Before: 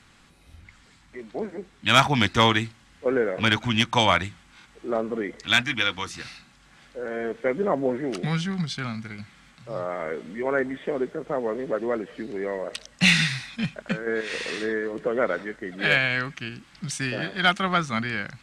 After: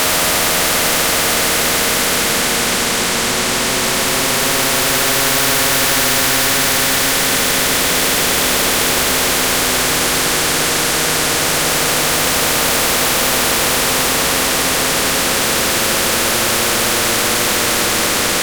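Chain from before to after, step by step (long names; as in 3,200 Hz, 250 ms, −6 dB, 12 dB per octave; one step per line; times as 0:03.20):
high-pass filter 130 Hz
high-shelf EQ 2,300 Hz +7.5 dB
notch filter 390 Hz, Q 12
all-pass dispersion highs, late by 117 ms, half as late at 560 Hz
rotating-speaker cabinet horn 0.6 Hz
convolution reverb RT60 1.0 s, pre-delay 3 ms, DRR 7.5 dB
in parallel at −6.5 dB: fuzz pedal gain 38 dB, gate −47 dBFS
on the sum: extreme stretch with random phases 8.7×, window 0.50 s, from 0:09.99
every bin compressed towards the loudest bin 4 to 1
level +4.5 dB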